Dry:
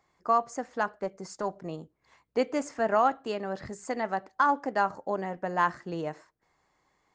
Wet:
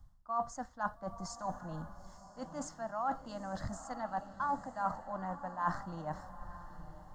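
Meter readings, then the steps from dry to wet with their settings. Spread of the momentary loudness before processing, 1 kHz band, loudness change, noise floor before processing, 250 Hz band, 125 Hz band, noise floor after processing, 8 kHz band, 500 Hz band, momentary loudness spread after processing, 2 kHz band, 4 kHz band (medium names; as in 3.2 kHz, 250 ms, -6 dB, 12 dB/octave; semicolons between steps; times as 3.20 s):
12 LU, -8.5 dB, -10.0 dB, -74 dBFS, -8.5 dB, -2.0 dB, -58 dBFS, -3.0 dB, -13.0 dB, 13 LU, -12.0 dB, -9.5 dB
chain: treble shelf 7.5 kHz -9 dB; added noise brown -55 dBFS; reverse; compression 12:1, threshold -37 dBFS, peak gain reduction 19 dB; reverse; static phaser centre 1 kHz, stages 4; echo that smears into a reverb 906 ms, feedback 41%, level -10 dB; three bands expanded up and down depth 40%; trim +6 dB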